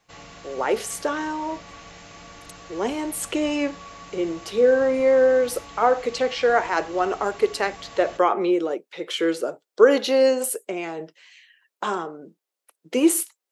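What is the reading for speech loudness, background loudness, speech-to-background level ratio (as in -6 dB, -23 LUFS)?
-22.5 LUFS, -42.5 LUFS, 20.0 dB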